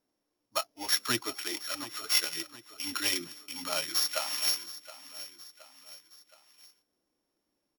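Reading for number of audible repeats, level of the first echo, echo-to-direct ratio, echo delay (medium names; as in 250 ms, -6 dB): 3, -16.0 dB, -15.0 dB, 720 ms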